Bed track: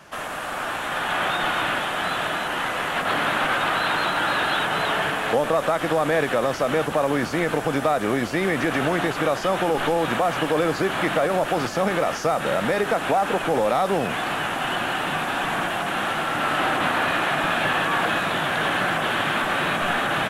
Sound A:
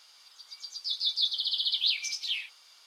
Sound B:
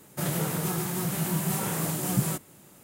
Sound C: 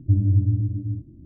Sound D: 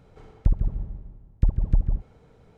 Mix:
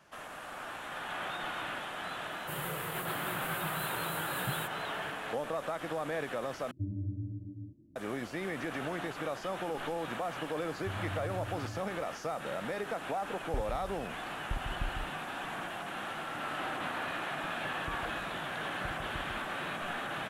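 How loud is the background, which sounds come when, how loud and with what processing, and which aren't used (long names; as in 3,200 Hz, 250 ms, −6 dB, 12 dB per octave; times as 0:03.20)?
bed track −14.5 dB
0:02.30: mix in B −7.5 dB + phaser with its sweep stopped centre 1,200 Hz, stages 8
0:06.71: overwrite with C −7 dB + high-pass filter 370 Hz 6 dB per octave
0:10.78: mix in C −12 dB + downward compressor, threshold −25 dBFS
0:13.08: mix in D −16.5 dB
0:17.42: mix in D −14.5 dB + high-pass filter 180 Hz 6 dB per octave
not used: A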